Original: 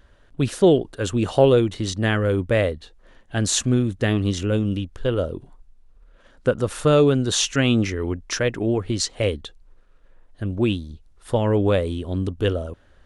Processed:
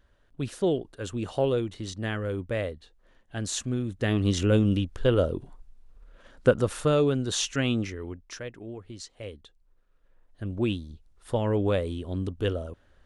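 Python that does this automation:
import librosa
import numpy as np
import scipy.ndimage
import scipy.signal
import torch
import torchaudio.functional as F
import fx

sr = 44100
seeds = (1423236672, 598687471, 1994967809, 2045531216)

y = fx.gain(x, sr, db=fx.line((3.77, -10.0), (4.41, 0.0), (6.49, 0.0), (6.95, -7.0), (7.66, -7.0), (8.63, -18.0), (9.19, -18.0), (10.57, -6.0)))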